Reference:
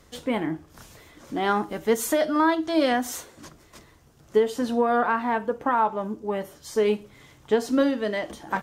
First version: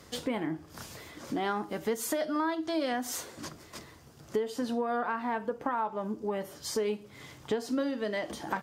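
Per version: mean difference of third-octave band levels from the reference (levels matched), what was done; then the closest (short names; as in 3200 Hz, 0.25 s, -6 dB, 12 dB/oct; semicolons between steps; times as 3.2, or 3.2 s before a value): 5.0 dB: HPF 78 Hz; bell 4800 Hz +5 dB 0.2 oct; compressor 3:1, threshold -35 dBFS, peak gain reduction 14.5 dB; gain +3 dB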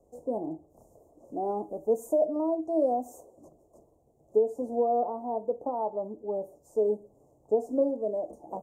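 11.0 dB: rattling part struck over -29 dBFS, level -25 dBFS; elliptic band-stop 690–7100 Hz, stop band 50 dB; three-band isolator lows -13 dB, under 360 Hz, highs -17 dB, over 2300 Hz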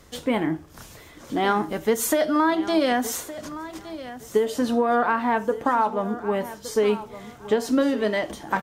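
3.5 dB: high shelf 12000 Hz +3 dB; compressor, threshold -20 dBFS, peak gain reduction 6 dB; feedback echo 1.166 s, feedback 25%, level -15 dB; gain +3.5 dB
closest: third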